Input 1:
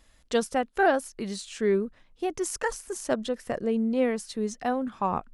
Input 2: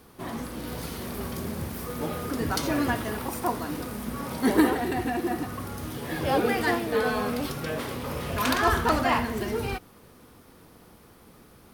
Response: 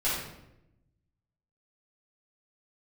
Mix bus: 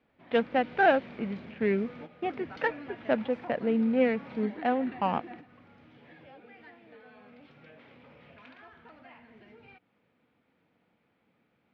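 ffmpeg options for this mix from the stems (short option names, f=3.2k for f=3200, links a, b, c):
-filter_complex "[0:a]agate=range=-33dB:threshold=-55dB:ratio=3:detection=peak,lowpass=4.5k,adynamicsmooth=sensitivity=5:basefreq=960,volume=1.5dB,asplit=2[a][b];[1:a]acompressor=threshold=-32dB:ratio=6,volume=-6.5dB[c];[b]apad=whole_len=517421[d];[c][d]sidechaingate=range=-10dB:threshold=-51dB:ratio=16:detection=peak[e];[a][e]amix=inputs=2:normalize=0,highpass=150,equalizer=f=380:t=q:w=4:g=-7,equalizer=f=1.1k:t=q:w=4:g=-7,equalizer=f=2.3k:t=q:w=4:g=6,lowpass=f=3.3k:w=0.5412,lowpass=f=3.3k:w=1.3066"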